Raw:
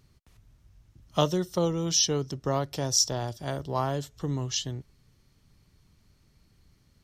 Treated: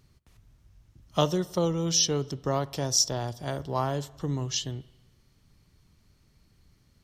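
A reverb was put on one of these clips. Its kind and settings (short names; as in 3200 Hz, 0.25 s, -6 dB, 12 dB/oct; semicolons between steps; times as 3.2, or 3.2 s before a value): spring tank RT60 1.1 s, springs 42/54 ms, DRR 19.5 dB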